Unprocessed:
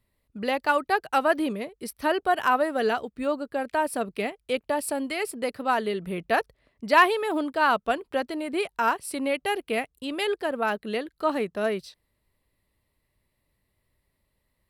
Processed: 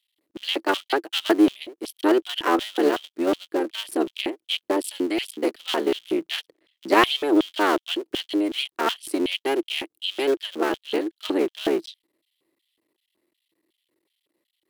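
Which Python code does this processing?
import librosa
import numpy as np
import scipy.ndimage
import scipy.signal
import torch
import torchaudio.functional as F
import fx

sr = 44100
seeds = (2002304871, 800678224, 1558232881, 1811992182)

y = fx.cycle_switch(x, sr, every=3, mode='muted')
y = fx.filter_lfo_highpass(y, sr, shape='square', hz=2.7, low_hz=330.0, high_hz=3200.0, q=7.6)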